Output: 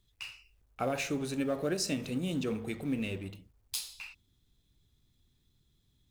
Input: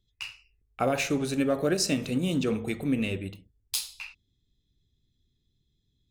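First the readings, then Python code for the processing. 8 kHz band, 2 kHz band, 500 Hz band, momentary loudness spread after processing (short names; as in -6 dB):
-6.0 dB, -6.0 dB, -6.0 dB, 13 LU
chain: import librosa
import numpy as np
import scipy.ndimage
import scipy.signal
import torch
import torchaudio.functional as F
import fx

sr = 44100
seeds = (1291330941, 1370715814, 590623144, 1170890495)

y = fx.law_mismatch(x, sr, coded='mu')
y = y * librosa.db_to_amplitude(-7.0)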